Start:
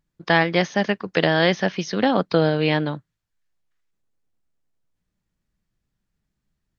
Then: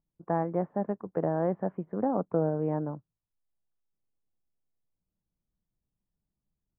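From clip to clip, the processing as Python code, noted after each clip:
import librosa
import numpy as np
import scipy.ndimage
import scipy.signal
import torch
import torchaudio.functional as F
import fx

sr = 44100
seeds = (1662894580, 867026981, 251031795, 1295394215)

y = scipy.signal.sosfilt(scipy.signal.cheby2(4, 70, 4500.0, 'lowpass', fs=sr, output='sos'), x)
y = y * 10.0 ** (-8.5 / 20.0)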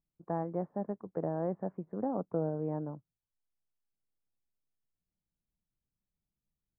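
y = fx.high_shelf(x, sr, hz=2000.0, db=-11.5)
y = y * 10.0 ** (-5.0 / 20.0)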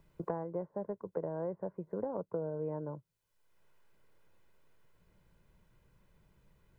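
y = x + 0.54 * np.pad(x, (int(2.0 * sr / 1000.0), 0))[:len(x)]
y = fx.band_squash(y, sr, depth_pct=100)
y = y * 10.0 ** (-4.0 / 20.0)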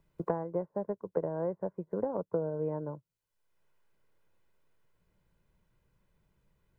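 y = fx.upward_expand(x, sr, threshold_db=-55.0, expansion=1.5)
y = y * 10.0 ** (6.0 / 20.0)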